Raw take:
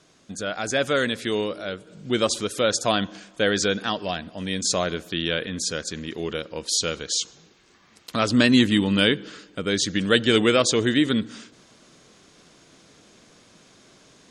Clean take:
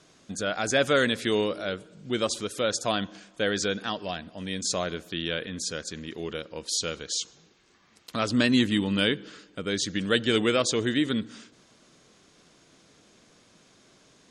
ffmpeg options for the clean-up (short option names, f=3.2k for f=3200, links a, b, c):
-af "asetnsamples=n=441:p=0,asendcmd='1.87 volume volume -5dB',volume=0dB"